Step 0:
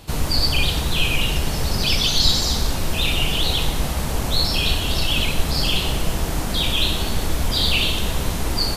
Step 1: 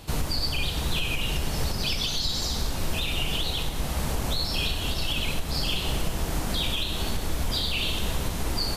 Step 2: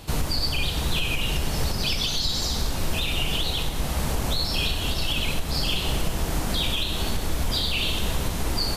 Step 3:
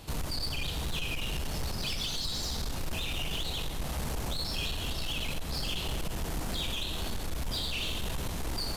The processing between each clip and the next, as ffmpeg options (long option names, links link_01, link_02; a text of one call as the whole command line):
ffmpeg -i in.wav -af "alimiter=limit=-15dB:level=0:latency=1:release=361,volume=-1.5dB" out.wav
ffmpeg -i in.wav -af "acontrast=59,volume=-4dB" out.wav
ffmpeg -i in.wav -af "asoftclip=type=tanh:threshold=-22dB,volume=-5.5dB" out.wav